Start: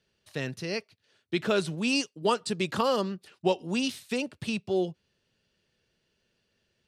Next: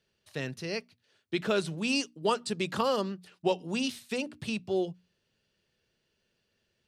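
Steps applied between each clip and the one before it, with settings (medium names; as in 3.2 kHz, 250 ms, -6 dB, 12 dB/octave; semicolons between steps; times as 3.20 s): hum notches 60/120/180/240/300 Hz; trim -2 dB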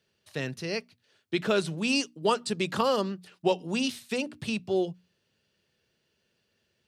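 high-pass 62 Hz; trim +2.5 dB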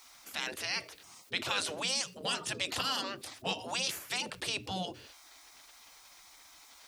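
spectral gate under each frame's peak -15 dB weak; level flattener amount 50%; trim +1 dB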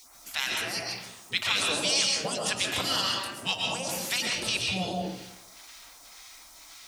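phase shifter stages 2, 1.9 Hz, lowest notch 260–3900 Hz; algorithmic reverb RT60 0.81 s, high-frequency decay 0.6×, pre-delay 90 ms, DRR -1 dB; trim +5.5 dB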